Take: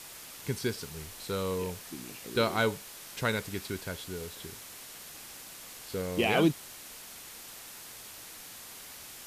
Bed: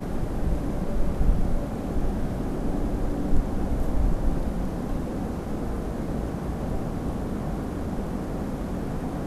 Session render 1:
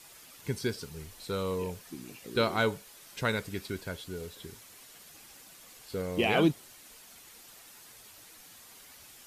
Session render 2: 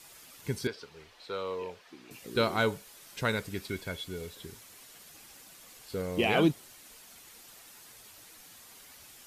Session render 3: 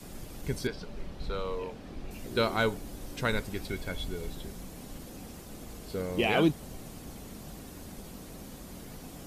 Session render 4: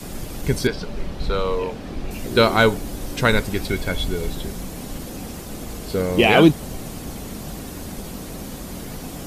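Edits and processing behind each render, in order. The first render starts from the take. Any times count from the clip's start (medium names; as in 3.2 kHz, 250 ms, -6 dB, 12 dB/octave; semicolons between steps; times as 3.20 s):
noise reduction 8 dB, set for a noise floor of -47 dBFS
0.67–2.11 s: three-band isolator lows -16 dB, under 370 Hz, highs -21 dB, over 4.8 kHz; 3.69–4.31 s: small resonant body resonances 2.2/3.4 kHz, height 12 dB
add bed -16 dB
trim +12 dB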